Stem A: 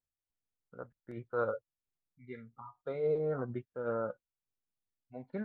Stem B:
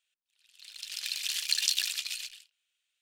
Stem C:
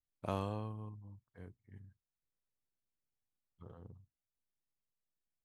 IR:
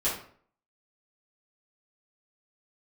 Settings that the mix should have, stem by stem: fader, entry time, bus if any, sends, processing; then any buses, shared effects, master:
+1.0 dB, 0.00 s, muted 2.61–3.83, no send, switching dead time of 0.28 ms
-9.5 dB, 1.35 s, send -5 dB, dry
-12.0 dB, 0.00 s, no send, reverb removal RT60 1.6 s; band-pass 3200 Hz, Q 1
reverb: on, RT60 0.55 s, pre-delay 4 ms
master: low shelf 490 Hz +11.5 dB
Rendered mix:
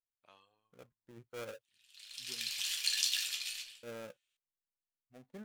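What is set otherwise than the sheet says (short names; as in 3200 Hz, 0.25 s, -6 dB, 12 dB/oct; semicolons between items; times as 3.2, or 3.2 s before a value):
stem A +1.0 dB -> -10.5 dB; master: missing low shelf 490 Hz +11.5 dB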